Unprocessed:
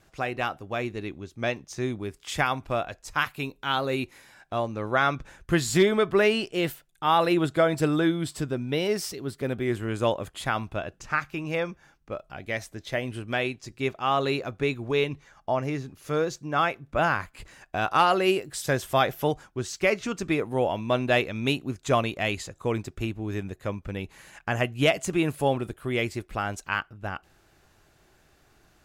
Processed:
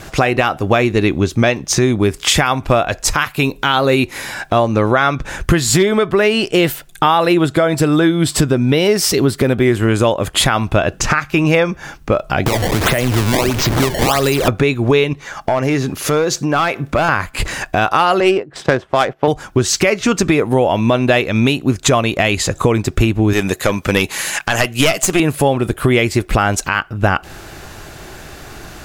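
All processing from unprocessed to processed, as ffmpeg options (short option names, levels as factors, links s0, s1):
-filter_complex "[0:a]asettb=1/sr,asplit=3[s0][s1][s2];[s0]atrim=end=12.464[s3];[s1]atrim=start=12.46:end=14.48,asetpts=PTS-STARTPTS,afade=t=in:d=0.004:c=qsin,afade=t=out:st=2.016:d=0.004:c=qsin,aeval=exprs='val(0)+0.5*0.0237*sgn(val(0))':c=same,acrusher=samples=20:mix=1:aa=0.000001:lfo=1:lforange=32:lforate=1.5,acrossover=split=87|1800[s4][s5][s6];[s4]acompressor=threshold=0.00398:ratio=4[s7];[s5]acompressor=threshold=0.0126:ratio=4[s8];[s6]acompressor=threshold=0.00708:ratio=4[s9];[s7][s8][s9]amix=inputs=3:normalize=0[s10];[s2]atrim=start=14.476[s11];[s3][s10]acrossfade=d=0.004:c1=hsin:c2=qsin[s12];[s12][s11]acrossfade=d=0.004:c1=qsin:c2=hsin,asettb=1/sr,asplit=3[s13][s14][s15];[s13]atrim=end=15.134[s16];[s14]atrim=start=15.13:end=17.09,asetpts=PTS-STARTPTS,afade=t=in:d=0.004:c=qsin,afade=t=out:st=1.956:d=0.004:c=qsin,lowshelf=f=120:g=-10.5,acompressor=threshold=0.00794:ratio=3:attack=3.2:release=140:knee=1:detection=peak,aeval=exprs='clip(val(0),-1,0.015)':c=same[s17];[s15]atrim=start=17.086[s18];[s16][s17]acrossfade=d=0.004:c1=hsin:c2=qsin[s19];[s19][s18]acrossfade=d=0.004:c1=qsin:c2=hsin,asettb=1/sr,asplit=3[s20][s21][s22];[s20]atrim=end=18.204[s23];[s21]atrim=start=18.2:end=19.28,asetpts=PTS-STARTPTS,afade=t=in:d=0.004:c=qsin,afade=t=out:st=1.076:d=0.004:c=qsin,agate=range=0.282:threshold=0.0141:ratio=16:release=100:detection=peak,highpass=f=220:p=1,adynamicsmooth=sensitivity=1.5:basefreq=1300[s24];[s22]atrim=start=19.276[s25];[s23][s24]acrossfade=d=0.004:c1=hsin:c2=qsin[s26];[s26][s25]acrossfade=d=0.004:c1=qsin:c2=hsin,asettb=1/sr,asplit=3[s27][s28][s29];[s27]atrim=end=23.334[s30];[s28]atrim=start=23.33:end=25.2,asetpts=PTS-STARTPTS,afade=t=in:d=0.004:c=qsin,afade=t=out:st=1.866:d=0.004:c=qsin,highpass=f=260:p=1,highshelf=f=2700:g=9,aeval=exprs='(tanh(8.91*val(0)+0.6)-tanh(0.6))/8.91':c=same[s31];[s29]atrim=start=25.196[s32];[s30][s31]acrossfade=d=0.004:c1=hsin:c2=qsin[s33];[s33][s32]acrossfade=d=0.004:c1=qsin:c2=hsin,acompressor=threshold=0.0158:ratio=12,alimiter=level_in=25.1:limit=0.891:release=50:level=0:latency=1,volume=0.891"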